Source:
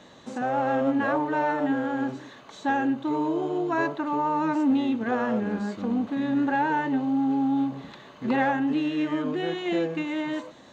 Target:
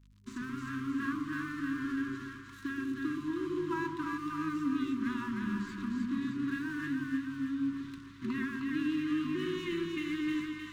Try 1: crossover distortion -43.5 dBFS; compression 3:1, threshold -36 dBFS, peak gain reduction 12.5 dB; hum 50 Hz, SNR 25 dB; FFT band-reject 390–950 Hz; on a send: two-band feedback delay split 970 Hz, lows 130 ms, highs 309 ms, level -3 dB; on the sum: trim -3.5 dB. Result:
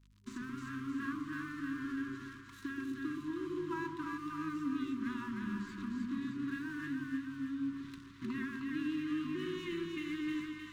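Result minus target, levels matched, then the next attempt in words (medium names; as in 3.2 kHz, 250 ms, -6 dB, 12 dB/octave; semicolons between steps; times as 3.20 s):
compression: peak gain reduction +4.5 dB
crossover distortion -43.5 dBFS; compression 3:1, threshold -29.5 dBFS, peak gain reduction 8 dB; hum 50 Hz, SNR 25 dB; FFT band-reject 390–950 Hz; on a send: two-band feedback delay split 970 Hz, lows 130 ms, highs 309 ms, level -3 dB; on the sum: trim -3.5 dB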